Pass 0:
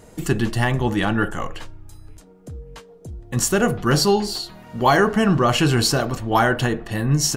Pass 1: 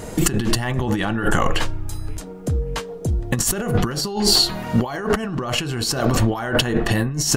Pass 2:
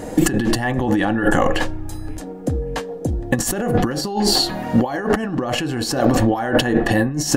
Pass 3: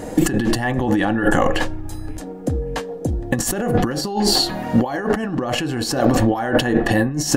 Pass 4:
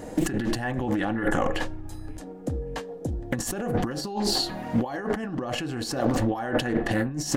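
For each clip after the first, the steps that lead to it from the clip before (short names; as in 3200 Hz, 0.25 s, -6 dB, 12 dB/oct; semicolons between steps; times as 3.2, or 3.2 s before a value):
negative-ratio compressor -28 dBFS, ratio -1; gain +7 dB
small resonant body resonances 290/530/750/1700 Hz, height 11 dB, ringing for 30 ms; gain -2.5 dB
ending taper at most 170 dB/s
Doppler distortion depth 0.3 ms; gain -8 dB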